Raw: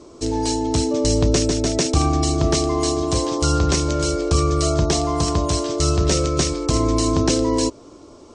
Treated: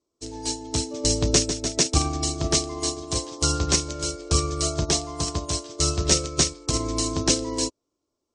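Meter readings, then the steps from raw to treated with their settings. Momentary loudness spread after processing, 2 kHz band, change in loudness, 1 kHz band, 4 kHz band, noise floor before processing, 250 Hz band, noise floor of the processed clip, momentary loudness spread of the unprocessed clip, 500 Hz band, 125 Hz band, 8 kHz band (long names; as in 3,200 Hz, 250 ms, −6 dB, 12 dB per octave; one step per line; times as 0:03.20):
8 LU, −2.5 dB, −4.0 dB, −7.5 dB, 0.0 dB, −44 dBFS, −8.5 dB, −80 dBFS, 3 LU, −8.5 dB, −7.0 dB, +1.5 dB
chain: high-shelf EQ 2,600 Hz +8.5 dB
expander for the loud parts 2.5 to 1, over −36 dBFS
level −2 dB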